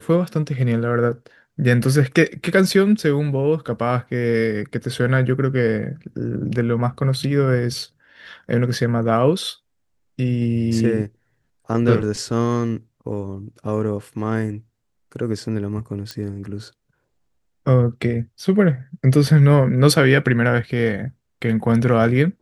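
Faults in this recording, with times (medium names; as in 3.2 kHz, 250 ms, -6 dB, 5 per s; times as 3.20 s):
16.11 s: pop -15 dBFS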